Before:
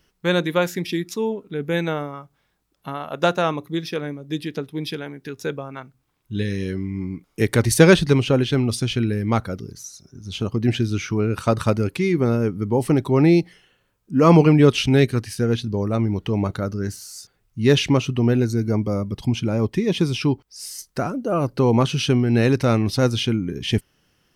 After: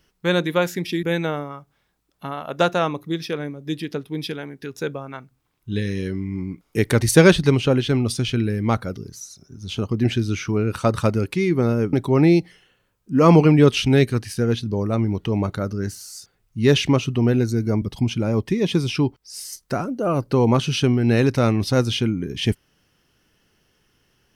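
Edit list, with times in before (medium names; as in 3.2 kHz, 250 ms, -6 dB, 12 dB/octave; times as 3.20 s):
1.03–1.66 s: delete
12.56–12.94 s: delete
18.83–19.08 s: delete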